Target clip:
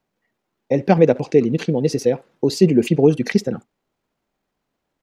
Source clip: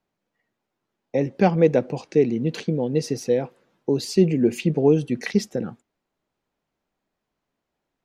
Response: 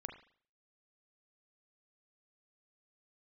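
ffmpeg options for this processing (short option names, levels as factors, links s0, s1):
-filter_complex "[0:a]asplit=2[s0][s1];[s1]adelay=100,highpass=300,lowpass=3400,asoftclip=type=hard:threshold=0.211,volume=0.1[s2];[s0][s2]amix=inputs=2:normalize=0,atempo=1.6,volume=1.68"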